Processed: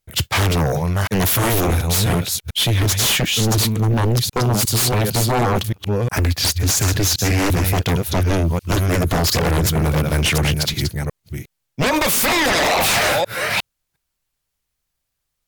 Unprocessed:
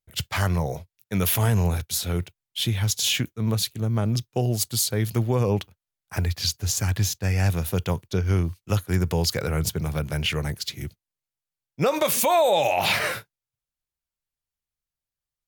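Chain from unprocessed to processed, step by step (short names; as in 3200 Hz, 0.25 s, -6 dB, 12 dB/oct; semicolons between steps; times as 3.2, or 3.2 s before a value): reverse delay 0.358 s, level -7.5 dB; sine folder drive 13 dB, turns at -9 dBFS; gain -4.5 dB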